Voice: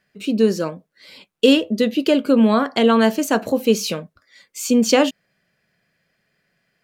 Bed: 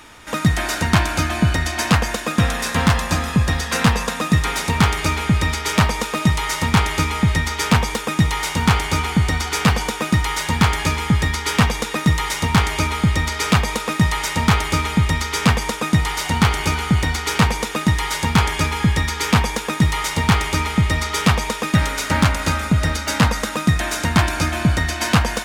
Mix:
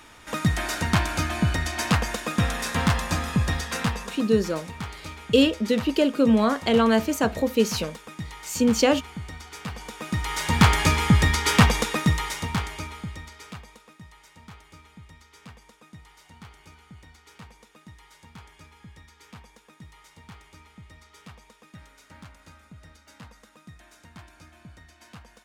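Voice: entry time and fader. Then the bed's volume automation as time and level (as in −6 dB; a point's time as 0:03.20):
3.90 s, −4.5 dB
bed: 0:03.55 −6 dB
0:04.52 −19 dB
0:09.69 −19 dB
0:10.64 −0.5 dB
0:11.77 −0.5 dB
0:13.98 −30.5 dB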